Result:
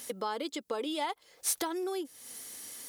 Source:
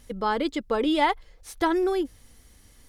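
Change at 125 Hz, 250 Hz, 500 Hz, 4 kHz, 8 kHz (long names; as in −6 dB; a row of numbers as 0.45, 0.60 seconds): can't be measured, −12.0 dB, −9.5 dB, −5.0 dB, +11.5 dB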